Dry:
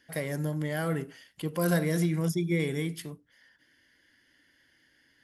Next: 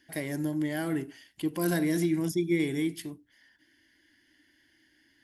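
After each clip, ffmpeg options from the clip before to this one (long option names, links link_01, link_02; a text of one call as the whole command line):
ffmpeg -i in.wav -af "equalizer=frequency=160:width_type=o:width=0.33:gain=-7,equalizer=frequency=315:width_type=o:width=0.33:gain=9,equalizer=frequency=500:width_type=o:width=0.33:gain=-10,equalizer=frequency=1250:width_type=o:width=0.33:gain=-9" out.wav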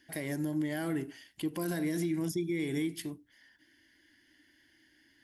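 ffmpeg -i in.wav -af "alimiter=level_in=0.5dB:limit=-24dB:level=0:latency=1:release=131,volume=-0.5dB" out.wav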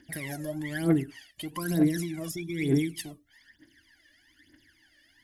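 ffmpeg -i in.wav -af "aphaser=in_gain=1:out_gain=1:delay=1.8:decay=0.79:speed=1.1:type=triangular" out.wav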